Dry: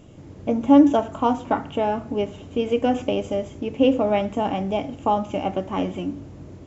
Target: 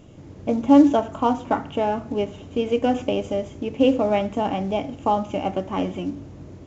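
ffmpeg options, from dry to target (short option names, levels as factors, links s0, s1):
-af "acrusher=bits=8:mode=log:mix=0:aa=0.000001,aresample=16000,aresample=44100"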